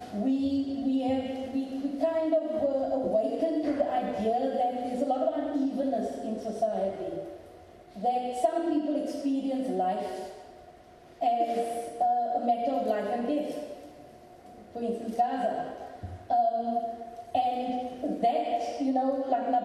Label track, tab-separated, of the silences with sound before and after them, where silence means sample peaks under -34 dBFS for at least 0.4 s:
7.320000	7.980000	silence
10.310000	11.210000	silence
13.730000	14.760000	silence